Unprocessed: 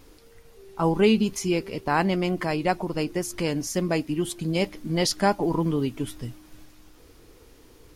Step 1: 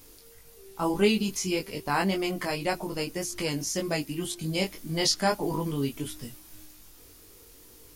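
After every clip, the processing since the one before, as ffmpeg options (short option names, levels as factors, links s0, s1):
-filter_complex "[0:a]flanger=delay=19.5:depth=2.1:speed=1.8,aemphasis=mode=production:type=75kf,acrossover=split=6700[s0][s1];[s1]acompressor=threshold=0.01:ratio=4:attack=1:release=60[s2];[s0][s2]amix=inputs=2:normalize=0,volume=0.841"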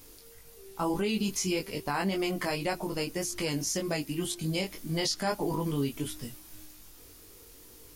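-af "alimiter=limit=0.1:level=0:latency=1:release=107"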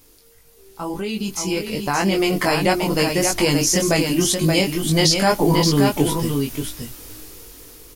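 -filter_complex "[0:a]dynaudnorm=f=720:g=5:m=4.47,asplit=2[s0][s1];[s1]aecho=0:1:577:0.562[s2];[s0][s2]amix=inputs=2:normalize=0"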